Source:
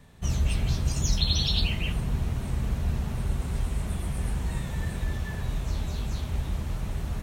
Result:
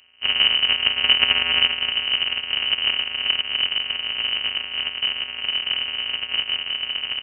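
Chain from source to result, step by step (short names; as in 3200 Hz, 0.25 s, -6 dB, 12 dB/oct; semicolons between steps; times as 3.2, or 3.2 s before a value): sample sorter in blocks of 256 samples; inverted band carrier 3000 Hz; upward expander 1.5:1, over -38 dBFS; gain +6.5 dB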